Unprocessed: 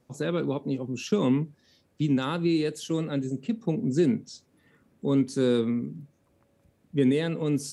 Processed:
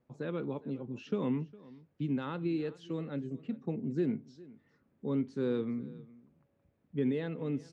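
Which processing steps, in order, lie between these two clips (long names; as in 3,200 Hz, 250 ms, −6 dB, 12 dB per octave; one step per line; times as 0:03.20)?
low-pass filter 2,600 Hz 12 dB per octave
on a send: single-tap delay 408 ms −21 dB
on the sum: level −8.5 dB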